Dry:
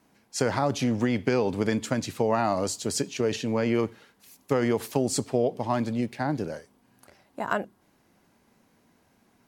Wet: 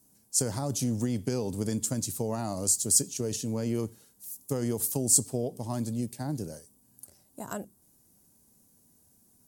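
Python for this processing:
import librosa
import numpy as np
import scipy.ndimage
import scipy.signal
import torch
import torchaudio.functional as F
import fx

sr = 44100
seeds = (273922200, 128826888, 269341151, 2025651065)

y = fx.curve_eq(x, sr, hz=(110.0, 2200.0, 4000.0, 8700.0), db=(0, -17, -6, 13))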